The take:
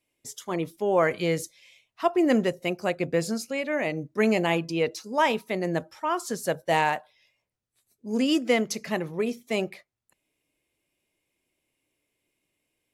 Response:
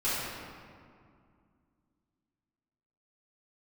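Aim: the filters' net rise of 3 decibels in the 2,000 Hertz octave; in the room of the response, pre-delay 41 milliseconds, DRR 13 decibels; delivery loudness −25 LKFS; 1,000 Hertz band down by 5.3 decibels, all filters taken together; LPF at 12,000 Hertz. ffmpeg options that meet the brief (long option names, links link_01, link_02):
-filter_complex "[0:a]lowpass=12000,equalizer=frequency=1000:width_type=o:gain=-8,equalizer=frequency=2000:width_type=o:gain=5.5,asplit=2[link_01][link_02];[1:a]atrim=start_sample=2205,adelay=41[link_03];[link_02][link_03]afir=irnorm=-1:irlink=0,volume=-23.5dB[link_04];[link_01][link_04]amix=inputs=2:normalize=0,volume=2dB"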